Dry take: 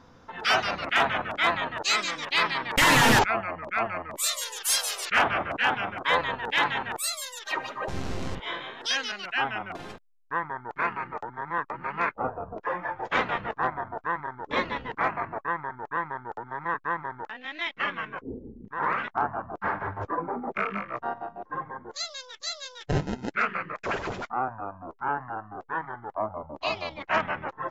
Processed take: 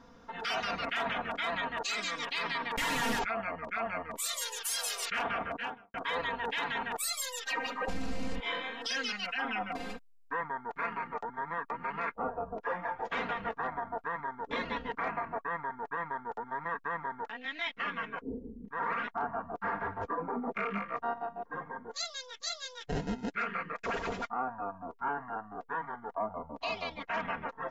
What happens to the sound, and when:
5.31–5.94 studio fade out
7–10.41 comb 3.9 ms, depth 95%
whole clip: comb 4.3 ms, depth 64%; limiter -20.5 dBFS; gain -4 dB

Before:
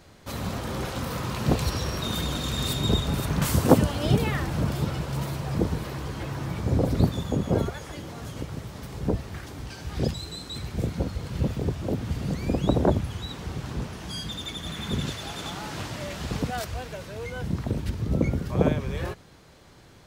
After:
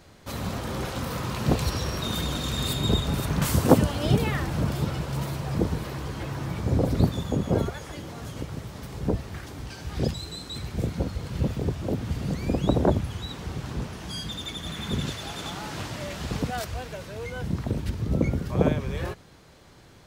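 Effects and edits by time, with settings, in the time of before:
2.59–3.04 notch 5700 Hz, Q 11

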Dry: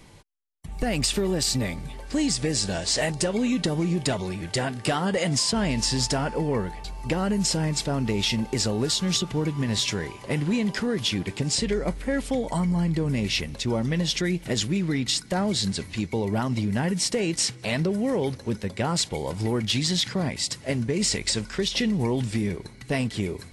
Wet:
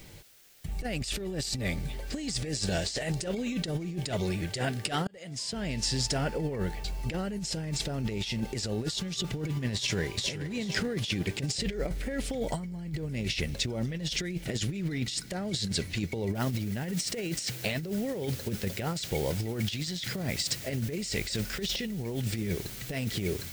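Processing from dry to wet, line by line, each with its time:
5.07–6.61 fade in
9.75–10.24 echo throw 0.42 s, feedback 25%, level -1 dB
16.35 noise floor step -59 dB -44 dB
whole clip: fifteen-band EQ 250 Hz -4 dB, 1000 Hz -10 dB, 10000 Hz -3 dB; negative-ratio compressor -29 dBFS, ratio -0.5; gain -1.5 dB

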